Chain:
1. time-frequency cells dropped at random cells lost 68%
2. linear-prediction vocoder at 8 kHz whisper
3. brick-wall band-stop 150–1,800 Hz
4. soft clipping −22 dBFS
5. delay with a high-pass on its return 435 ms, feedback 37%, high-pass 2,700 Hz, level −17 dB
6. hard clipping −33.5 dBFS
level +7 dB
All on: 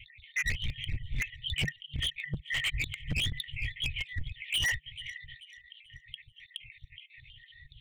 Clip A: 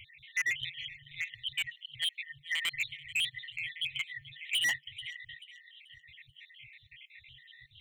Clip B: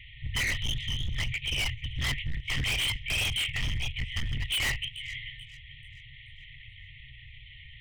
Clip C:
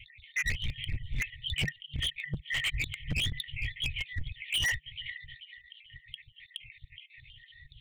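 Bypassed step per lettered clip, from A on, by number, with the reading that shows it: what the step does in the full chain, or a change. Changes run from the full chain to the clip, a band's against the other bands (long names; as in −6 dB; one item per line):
2, 125 Hz band −19.0 dB
1, 1 kHz band +6.5 dB
4, distortion level −10 dB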